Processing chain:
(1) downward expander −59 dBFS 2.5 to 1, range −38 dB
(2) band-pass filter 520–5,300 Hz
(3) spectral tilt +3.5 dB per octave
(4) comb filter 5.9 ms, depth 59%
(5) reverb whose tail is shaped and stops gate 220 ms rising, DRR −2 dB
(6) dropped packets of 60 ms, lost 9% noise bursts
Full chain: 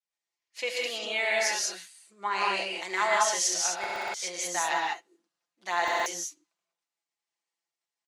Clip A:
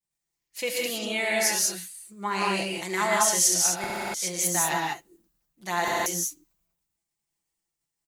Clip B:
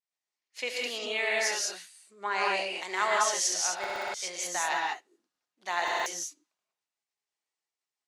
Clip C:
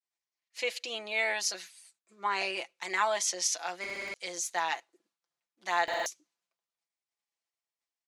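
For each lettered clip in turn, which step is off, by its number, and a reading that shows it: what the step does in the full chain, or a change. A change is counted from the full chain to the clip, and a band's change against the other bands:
2, 250 Hz band +10.0 dB
4, change in integrated loudness −1.5 LU
5, change in integrated loudness −3.5 LU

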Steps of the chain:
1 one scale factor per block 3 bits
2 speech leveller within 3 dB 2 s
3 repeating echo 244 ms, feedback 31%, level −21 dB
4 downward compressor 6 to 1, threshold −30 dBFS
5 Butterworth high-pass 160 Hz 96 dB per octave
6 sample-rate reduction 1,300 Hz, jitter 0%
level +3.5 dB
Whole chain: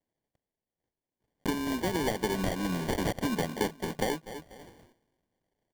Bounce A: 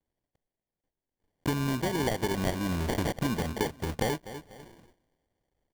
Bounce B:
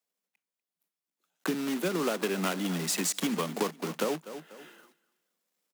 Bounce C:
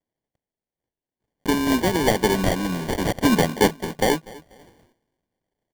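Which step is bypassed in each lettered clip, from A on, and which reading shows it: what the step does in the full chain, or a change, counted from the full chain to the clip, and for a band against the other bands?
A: 5, 125 Hz band +4.5 dB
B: 6, change in crest factor +2.0 dB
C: 4, average gain reduction 7.5 dB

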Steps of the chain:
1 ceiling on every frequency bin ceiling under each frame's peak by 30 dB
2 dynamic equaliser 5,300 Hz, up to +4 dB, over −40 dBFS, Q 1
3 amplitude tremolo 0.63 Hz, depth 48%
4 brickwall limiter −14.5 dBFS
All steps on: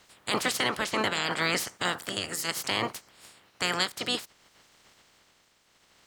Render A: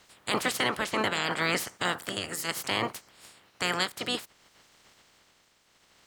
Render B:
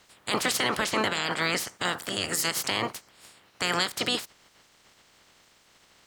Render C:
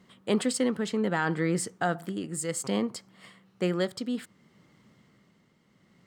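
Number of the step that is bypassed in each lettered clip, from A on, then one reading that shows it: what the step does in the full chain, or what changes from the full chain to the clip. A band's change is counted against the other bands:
2, 8 kHz band −2.5 dB
3, 8 kHz band +2.0 dB
1, 4 kHz band −12.5 dB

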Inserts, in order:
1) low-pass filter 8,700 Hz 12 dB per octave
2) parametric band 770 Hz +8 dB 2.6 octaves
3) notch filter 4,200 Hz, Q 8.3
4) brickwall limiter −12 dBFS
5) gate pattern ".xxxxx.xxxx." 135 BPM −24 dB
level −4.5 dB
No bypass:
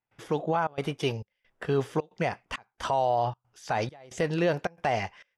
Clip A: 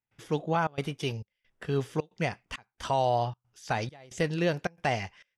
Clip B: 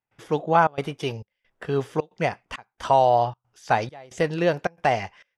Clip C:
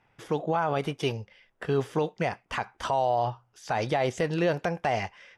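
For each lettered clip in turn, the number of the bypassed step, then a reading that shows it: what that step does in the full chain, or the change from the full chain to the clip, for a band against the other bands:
2, change in integrated loudness −1.0 LU
4, average gain reduction 2.5 dB
5, change in momentary loudness spread −3 LU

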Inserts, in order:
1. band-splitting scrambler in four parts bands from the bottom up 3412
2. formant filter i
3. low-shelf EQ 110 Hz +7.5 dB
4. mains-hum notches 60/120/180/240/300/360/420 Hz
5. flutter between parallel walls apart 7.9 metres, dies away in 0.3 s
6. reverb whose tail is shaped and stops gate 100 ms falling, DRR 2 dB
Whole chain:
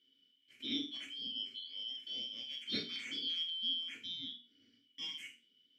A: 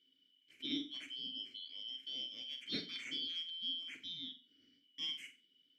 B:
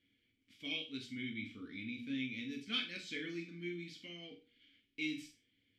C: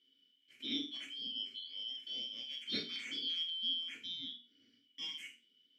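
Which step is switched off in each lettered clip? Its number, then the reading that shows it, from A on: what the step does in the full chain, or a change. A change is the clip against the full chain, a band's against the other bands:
6, echo-to-direct ratio −1.0 dB to −8.5 dB
1, 4 kHz band −14.5 dB
3, 125 Hz band −2.5 dB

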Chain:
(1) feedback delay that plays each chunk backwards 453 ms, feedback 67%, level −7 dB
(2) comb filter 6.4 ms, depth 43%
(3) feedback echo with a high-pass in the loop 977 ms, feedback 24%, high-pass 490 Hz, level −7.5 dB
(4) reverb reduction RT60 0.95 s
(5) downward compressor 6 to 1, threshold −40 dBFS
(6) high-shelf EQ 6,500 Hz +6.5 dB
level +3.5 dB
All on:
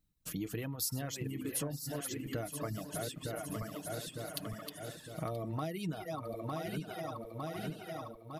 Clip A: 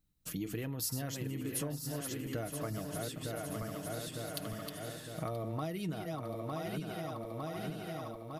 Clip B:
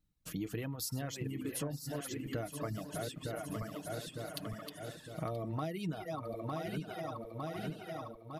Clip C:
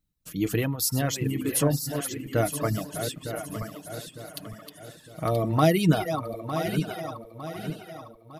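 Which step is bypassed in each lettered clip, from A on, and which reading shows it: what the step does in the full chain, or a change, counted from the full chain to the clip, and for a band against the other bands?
4, change in momentary loudness spread −2 LU
6, 8 kHz band −4.0 dB
5, average gain reduction 7.5 dB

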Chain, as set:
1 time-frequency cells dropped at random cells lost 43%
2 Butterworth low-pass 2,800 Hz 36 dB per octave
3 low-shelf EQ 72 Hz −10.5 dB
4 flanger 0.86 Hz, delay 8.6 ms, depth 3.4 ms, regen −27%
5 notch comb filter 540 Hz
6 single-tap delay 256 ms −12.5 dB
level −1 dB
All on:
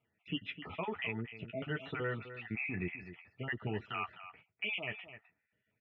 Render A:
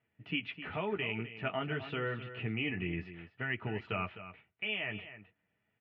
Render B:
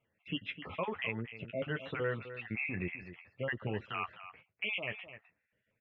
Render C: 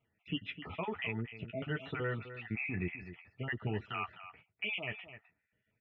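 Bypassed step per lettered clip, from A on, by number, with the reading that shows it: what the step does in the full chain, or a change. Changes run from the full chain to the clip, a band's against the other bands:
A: 1, change in integrated loudness +2.5 LU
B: 5, 500 Hz band +2.5 dB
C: 3, 125 Hz band +2.5 dB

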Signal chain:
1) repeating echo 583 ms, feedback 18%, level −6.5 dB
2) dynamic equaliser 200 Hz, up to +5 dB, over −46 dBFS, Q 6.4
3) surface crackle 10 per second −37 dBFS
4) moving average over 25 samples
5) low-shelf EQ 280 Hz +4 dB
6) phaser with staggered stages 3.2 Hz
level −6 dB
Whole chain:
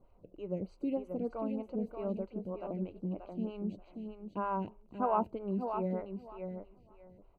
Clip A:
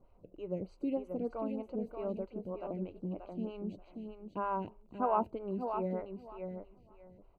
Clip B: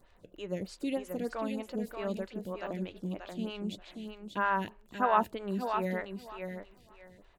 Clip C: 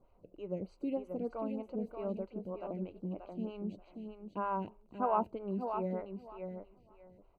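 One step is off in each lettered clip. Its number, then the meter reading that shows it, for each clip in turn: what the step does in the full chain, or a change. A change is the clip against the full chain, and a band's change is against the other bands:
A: 2, 125 Hz band −2.5 dB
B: 4, 2 kHz band +17.0 dB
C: 5, 125 Hz band −2.0 dB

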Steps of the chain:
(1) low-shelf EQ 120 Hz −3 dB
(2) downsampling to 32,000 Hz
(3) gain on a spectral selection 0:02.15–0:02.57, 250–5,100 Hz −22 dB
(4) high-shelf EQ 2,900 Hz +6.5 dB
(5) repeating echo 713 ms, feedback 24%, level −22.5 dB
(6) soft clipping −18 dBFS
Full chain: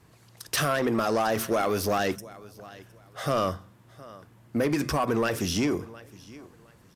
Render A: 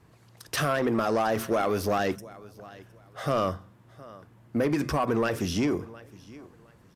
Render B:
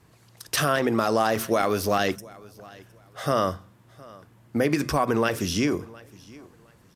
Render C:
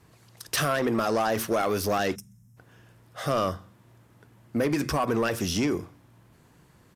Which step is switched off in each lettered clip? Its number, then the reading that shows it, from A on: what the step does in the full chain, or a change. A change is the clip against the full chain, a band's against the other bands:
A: 4, 8 kHz band −5.0 dB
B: 6, distortion level −14 dB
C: 5, change in momentary loudness spread −12 LU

